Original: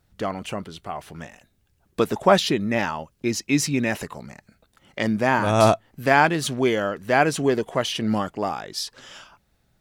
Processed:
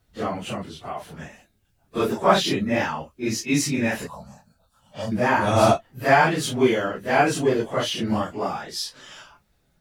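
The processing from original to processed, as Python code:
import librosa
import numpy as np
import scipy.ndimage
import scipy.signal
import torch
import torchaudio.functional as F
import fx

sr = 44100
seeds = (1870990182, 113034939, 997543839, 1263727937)

y = fx.phase_scramble(x, sr, seeds[0], window_ms=100)
y = fx.fixed_phaser(y, sr, hz=860.0, stages=4, at=(4.07, 5.12))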